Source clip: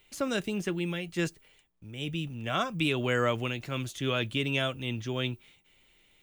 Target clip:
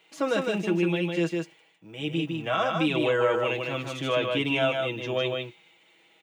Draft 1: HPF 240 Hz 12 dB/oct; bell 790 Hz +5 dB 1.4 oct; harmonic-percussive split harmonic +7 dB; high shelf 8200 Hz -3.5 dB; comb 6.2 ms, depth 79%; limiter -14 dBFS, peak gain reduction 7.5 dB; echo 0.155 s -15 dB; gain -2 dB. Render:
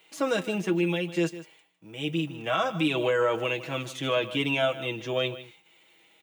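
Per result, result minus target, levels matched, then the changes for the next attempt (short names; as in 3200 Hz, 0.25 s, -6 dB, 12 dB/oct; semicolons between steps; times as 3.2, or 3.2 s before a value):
echo-to-direct -11 dB; 8000 Hz band +4.0 dB
change: echo 0.155 s -4 dB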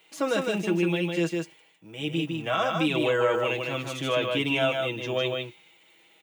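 8000 Hz band +4.0 dB
change: high shelf 8200 Hz -14 dB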